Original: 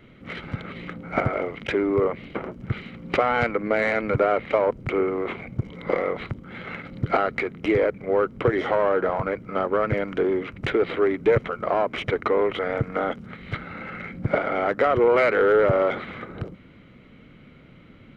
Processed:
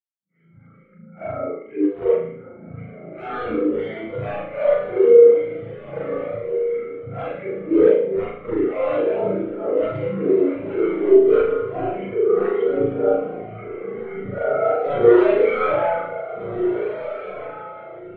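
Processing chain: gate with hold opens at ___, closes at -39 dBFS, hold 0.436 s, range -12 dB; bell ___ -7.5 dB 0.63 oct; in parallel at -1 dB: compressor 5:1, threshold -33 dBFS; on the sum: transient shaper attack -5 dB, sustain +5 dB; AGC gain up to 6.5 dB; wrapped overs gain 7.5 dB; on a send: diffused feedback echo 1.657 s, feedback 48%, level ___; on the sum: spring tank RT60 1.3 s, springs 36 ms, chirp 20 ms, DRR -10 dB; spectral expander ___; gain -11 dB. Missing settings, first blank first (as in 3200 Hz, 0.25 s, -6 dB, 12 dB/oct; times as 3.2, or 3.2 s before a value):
-38 dBFS, 63 Hz, -3.5 dB, 2.5:1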